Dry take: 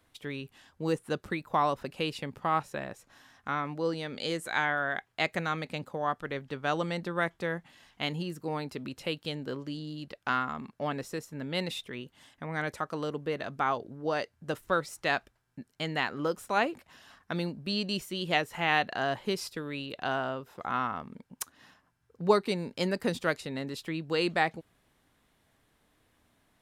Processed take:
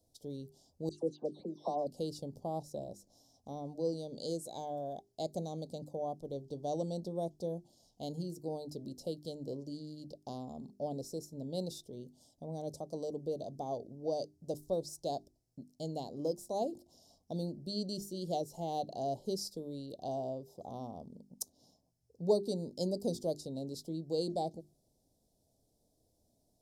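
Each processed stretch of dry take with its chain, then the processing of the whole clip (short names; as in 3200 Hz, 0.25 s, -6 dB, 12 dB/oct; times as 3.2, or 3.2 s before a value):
0.89–1.87 HPF 220 Hz + air absorption 93 m + dispersion lows, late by 0.141 s, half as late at 1800 Hz
whole clip: elliptic band-stop 670–5100 Hz, stop band 50 dB; bell 2500 Hz +14 dB 1.2 oct; notches 50/100/150/200/250/300/350/400 Hz; gain -3.5 dB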